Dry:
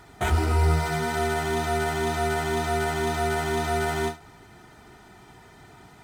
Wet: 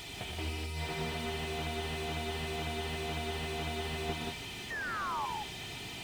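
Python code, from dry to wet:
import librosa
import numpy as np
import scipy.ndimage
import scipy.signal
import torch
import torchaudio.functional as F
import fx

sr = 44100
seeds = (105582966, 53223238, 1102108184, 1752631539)

p1 = fx.high_shelf_res(x, sr, hz=2000.0, db=11.0, q=3.0)
p2 = fx.spec_paint(p1, sr, seeds[0], shape='fall', start_s=4.7, length_s=0.56, low_hz=810.0, high_hz=1900.0, level_db=-37.0)
p3 = fx.over_compress(p2, sr, threshold_db=-27.0, ratio=-0.5)
p4 = p3 + fx.echo_multitap(p3, sr, ms=(121, 176), db=(-6.5, -4.0), dry=0)
p5 = fx.slew_limit(p4, sr, full_power_hz=49.0)
y = F.gain(torch.from_numpy(p5), -5.0).numpy()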